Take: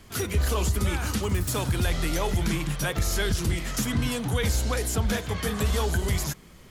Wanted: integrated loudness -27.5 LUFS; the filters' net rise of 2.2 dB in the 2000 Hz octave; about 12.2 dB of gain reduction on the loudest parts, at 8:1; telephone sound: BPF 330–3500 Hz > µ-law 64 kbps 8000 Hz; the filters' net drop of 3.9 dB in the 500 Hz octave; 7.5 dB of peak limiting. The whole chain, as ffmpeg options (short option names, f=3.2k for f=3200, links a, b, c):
-af "equalizer=f=500:t=o:g=-3.5,equalizer=f=2k:t=o:g=3.5,acompressor=threshold=-33dB:ratio=8,alimiter=level_in=6.5dB:limit=-24dB:level=0:latency=1,volume=-6.5dB,highpass=330,lowpass=3.5k,volume=18dB" -ar 8000 -c:a pcm_mulaw